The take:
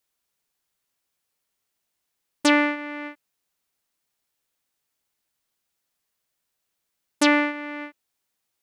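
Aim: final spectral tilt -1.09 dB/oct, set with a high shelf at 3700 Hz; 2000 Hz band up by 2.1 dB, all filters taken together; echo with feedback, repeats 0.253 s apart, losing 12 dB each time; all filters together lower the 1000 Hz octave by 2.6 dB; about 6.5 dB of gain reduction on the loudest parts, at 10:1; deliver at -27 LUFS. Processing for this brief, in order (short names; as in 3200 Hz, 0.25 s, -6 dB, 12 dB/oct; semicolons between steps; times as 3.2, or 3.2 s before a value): bell 1000 Hz -4 dB; bell 2000 Hz +4.5 dB; high shelf 3700 Hz -3.5 dB; compressor 10:1, threshold -19 dBFS; feedback echo 0.253 s, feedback 25%, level -12 dB; gain +0.5 dB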